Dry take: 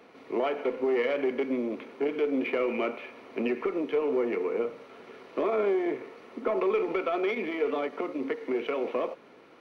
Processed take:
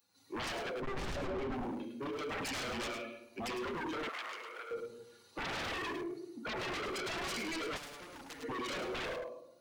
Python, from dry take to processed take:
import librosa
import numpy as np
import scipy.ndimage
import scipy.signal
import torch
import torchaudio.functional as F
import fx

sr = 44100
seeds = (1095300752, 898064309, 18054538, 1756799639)

y = fx.bin_expand(x, sr, power=2.0)
y = fx.high_shelf(y, sr, hz=3000.0, db=10.0)
y = fx.room_shoebox(y, sr, seeds[0], volume_m3=2000.0, walls='furnished', distance_m=2.4)
y = fx.rider(y, sr, range_db=5, speed_s=2.0)
y = 10.0 ** (-33.5 / 20.0) * (np.abs((y / 10.0 ** (-33.5 / 20.0) + 3.0) % 4.0 - 2.0) - 1.0)
y = fx.tilt_eq(y, sr, slope=-3.5, at=(0.8, 1.54))
y = y + 10.0 ** (-8.0 / 20.0) * np.pad(y, (int(105 * sr / 1000.0), 0))[:len(y)]
y = 10.0 ** (-36.5 / 20.0) * np.tanh(y / 10.0 ** (-36.5 / 20.0))
y = fx.highpass(y, sr, hz=1000.0, slope=12, at=(4.09, 4.71))
y = fx.spectral_comp(y, sr, ratio=2.0, at=(7.76, 8.42), fade=0.02)
y = y * 10.0 ** (2.0 / 20.0)